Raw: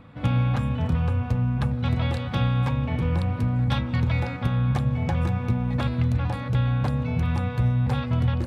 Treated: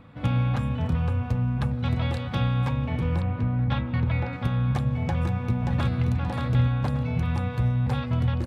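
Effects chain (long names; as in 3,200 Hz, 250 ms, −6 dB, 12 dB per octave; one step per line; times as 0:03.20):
0:03.21–0:04.33: low-pass filter 3,100 Hz 12 dB per octave
0:05.03–0:06.09: delay throw 580 ms, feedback 35%, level −4.5 dB
level −1.5 dB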